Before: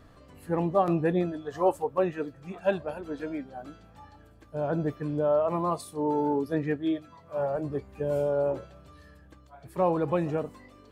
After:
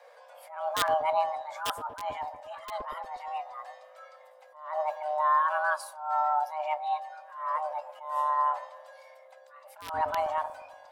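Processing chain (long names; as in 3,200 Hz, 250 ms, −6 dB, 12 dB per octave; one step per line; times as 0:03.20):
frequency shifter +460 Hz
wrap-around overflow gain 14.5 dB
on a send: delay with a low-pass on its return 118 ms, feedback 54%, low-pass 580 Hz, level −9 dB
on the sum: level that may rise only so fast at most 100 dB per second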